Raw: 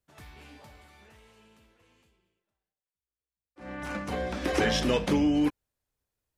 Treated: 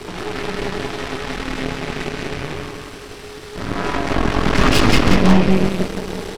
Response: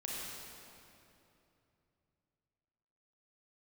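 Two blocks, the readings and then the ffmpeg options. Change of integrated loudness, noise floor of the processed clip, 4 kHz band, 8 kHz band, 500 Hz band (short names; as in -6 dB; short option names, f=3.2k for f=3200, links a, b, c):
+8.5 dB, -35 dBFS, +12.5 dB, +12.0 dB, +11.0 dB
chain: -filter_complex "[0:a]aeval=exprs='val(0)+0.5*0.0355*sgn(val(0))':c=same,bandreject=f=7.2k:w=11,afreqshift=-480,adynamicsmooth=sensitivity=2:basefreq=4.6k,aecho=1:1:180|360|540|720|900|1080:0.708|0.304|0.131|0.0563|0.0242|0.0104,asplit=2[a][b];[1:a]atrim=start_sample=2205[c];[b][c]afir=irnorm=-1:irlink=0,volume=-6.5dB[d];[a][d]amix=inputs=2:normalize=0,aeval=exprs='0.355*(cos(1*acos(clip(val(0)/0.355,-1,1)))-cos(1*PI/2))+0.112*(cos(6*acos(clip(val(0)/0.355,-1,1)))-cos(6*PI/2))':c=same,volume=3.5dB"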